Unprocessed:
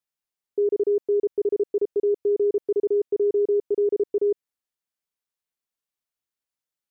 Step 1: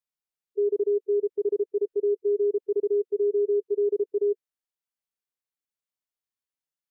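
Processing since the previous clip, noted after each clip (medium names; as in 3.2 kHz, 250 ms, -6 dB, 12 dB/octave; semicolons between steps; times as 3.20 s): harmonic-percussive split percussive -12 dB; trim -2 dB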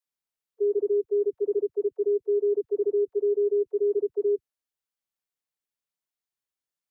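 phase dispersion lows, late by 72 ms, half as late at 350 Hz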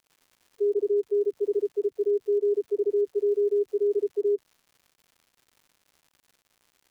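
crackle 230 per s -48 dBFS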